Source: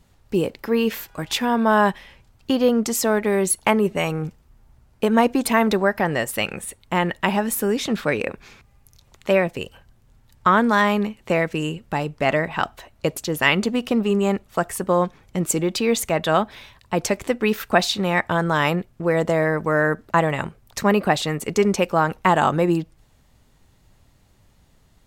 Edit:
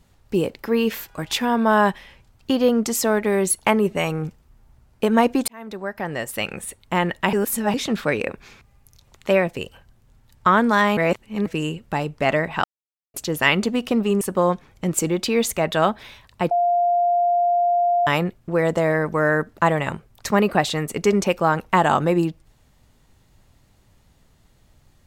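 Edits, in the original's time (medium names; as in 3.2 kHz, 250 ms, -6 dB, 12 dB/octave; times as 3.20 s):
5.48–6.68 s: fade in linear
7.33–7.74 s: reverse
10.97–11.46 s: reverse
12.64–13.14 s: mute
14.21–14.73 s: delete
17.03–18.59 s: bleep 700 Hz -15.5 dBFS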